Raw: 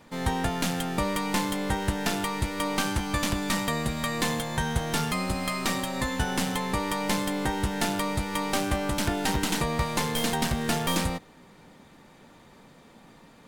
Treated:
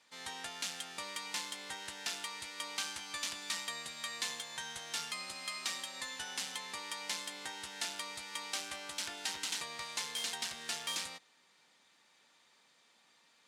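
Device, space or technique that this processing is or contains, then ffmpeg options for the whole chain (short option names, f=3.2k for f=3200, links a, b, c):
piezo pickup straight into a mixer: -af "lowpass=5.5k,aderivative,volume=1dB"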